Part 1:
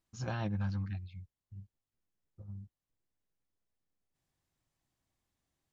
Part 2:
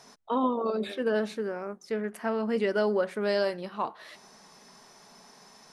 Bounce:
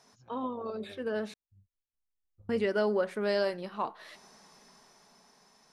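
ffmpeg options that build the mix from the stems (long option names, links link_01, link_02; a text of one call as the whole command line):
ffmpeg -i stem1.wav -i stem2.wav -filter_complex "[0:a]acompressor=threshold=-38dB:ratio=6,asubboost=boost=8:cutoff=59,volume=-12.5dB,afade=type=in:start_time=2.18:duration=0.58:silence=0.446684[link_01];[1:a]volume=-9dB,asplit=3[link_02][link_03][link_04];[link_02]atrim=end=1.34,asetpts=PTS-STARTPTS,afade=type=out:start_time=1.336:duration=0.004:curve=hsin[link_05];[link_03]atrim=start=1.34:end=2.49,asetpts=PTS-STARTPTS,volume=0[link_06];[link_04]atrim=start=2.49,asetpts=PTS-STARTPTS,afade=type=in:duration=0.004:curve=hsin[link_07];[link_05][link_06][link_07]concat=n=3:v=0:a=1[link_08];[link_01][link_08]amix=inputs=2:normalize=0,dynaudnorm=framelen=210:gausssize=13:maxgain=7dB" out.wav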